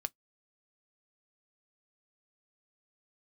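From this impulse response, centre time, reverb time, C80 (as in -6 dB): 1 ms, 0.10 s, 57.0 dB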